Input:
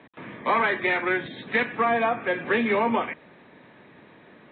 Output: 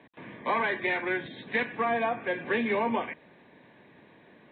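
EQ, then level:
notch filter 1,300 Hz, Q 6.1
−4.5 dB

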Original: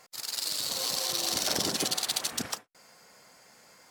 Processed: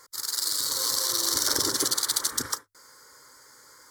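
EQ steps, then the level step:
parametric band 500 Hz −5.5 dB 1.3 octaves
mains-hum notches 50/100 Hz
phaser with its sweep stopped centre 710 Hz, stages 6
+7.5 dB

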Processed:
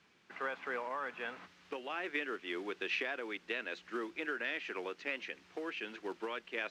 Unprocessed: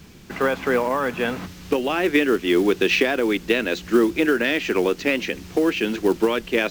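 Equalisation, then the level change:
low-pass filter 1,600 Hz 12 dB per octave
first difference
+2.5 dB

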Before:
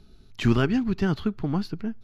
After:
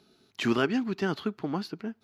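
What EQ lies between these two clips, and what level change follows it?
high-pass filter 280 Hz 12 dB per octave
0.0 dB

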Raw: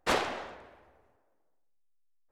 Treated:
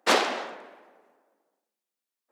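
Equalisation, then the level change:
Butterworth high-pass 200 Hz 36 dB per octave
dynamic equaliser 4,900 Hz, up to +4 dB, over −50 dBFS, Q 0.98
+6.0 dB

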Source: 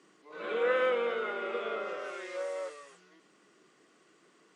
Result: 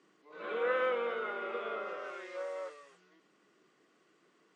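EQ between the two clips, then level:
high-frequency loss of the air 57 metres
dynamic equaliser 1,100 Hz, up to +4 dB, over −45 dBFS, Q 1.1
−4.5 dB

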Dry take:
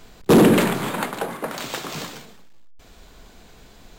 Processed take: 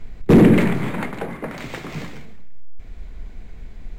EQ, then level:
spectral tilt −4.5 dB per octave
parametric band 2,100 Hz +12 dB 0.68 octaves
high-shelf EQ 4,200 Hz +10 dB
−6.5 dB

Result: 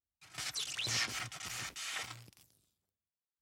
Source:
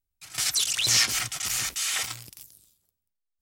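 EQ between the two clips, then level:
high-pass filter 68 Hz
low-pass filter 2,300 Hz 6 dB per octave
−7.0 dB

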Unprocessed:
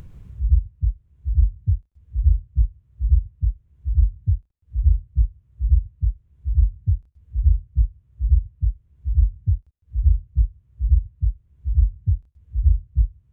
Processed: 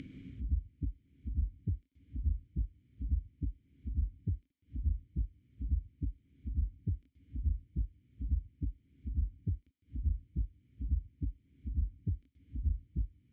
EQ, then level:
dynamic equaliser 140 Hz, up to −8 dB, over −33 dBFS, Q 0.99
formant filter i
+15.5 dB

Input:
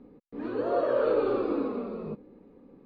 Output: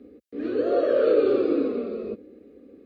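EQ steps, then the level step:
high-pass filter 61 Hz 24 dB per octave
phaser with its sweep stopped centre 380 Hz, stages 4
+7.0 dB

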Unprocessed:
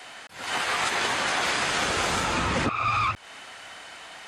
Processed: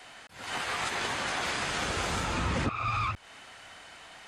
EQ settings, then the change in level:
low-shelf EQ 150 Hz +9.5 dB
−6.5 dB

